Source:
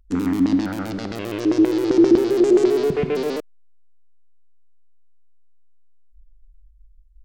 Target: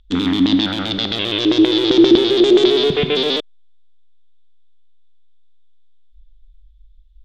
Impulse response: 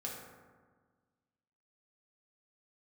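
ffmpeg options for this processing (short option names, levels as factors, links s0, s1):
-af "lowpass=f=3500:t=q:w=13,aemphasis=mode=production:type=50fm,volume=1.5"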